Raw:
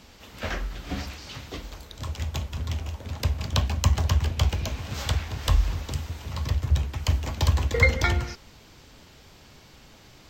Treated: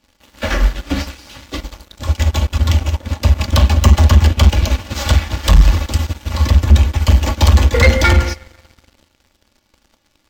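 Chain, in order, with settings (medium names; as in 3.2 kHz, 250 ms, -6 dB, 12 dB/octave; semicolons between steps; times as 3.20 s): comb 3.5 ms, depth 66%; reverberation RT60 2.2 s, pre-delay 38 ms, DRR 15.5 dB; waveshaping leveller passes 3; loudness maximiser +10.5 dB; upward expansion 2.5:1, over -15 dBFS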